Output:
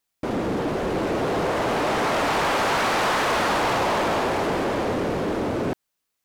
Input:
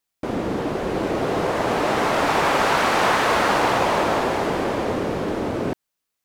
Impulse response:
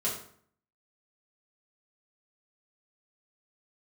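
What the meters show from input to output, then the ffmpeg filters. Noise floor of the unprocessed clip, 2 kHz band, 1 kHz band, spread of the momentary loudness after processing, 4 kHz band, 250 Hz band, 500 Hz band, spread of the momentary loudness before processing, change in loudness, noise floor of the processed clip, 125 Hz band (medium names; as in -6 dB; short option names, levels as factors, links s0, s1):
-81 dBFS, -2.0 dB, -2.5 dB, 5 LU, -1.0 dB, -1.5 dB, -2.0 dB, 8 LU, -2.0 dB, -79 dBFS, -1.0 dB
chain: -af "asoftclip=type=tanh:threshold=0.106,volume=1.19"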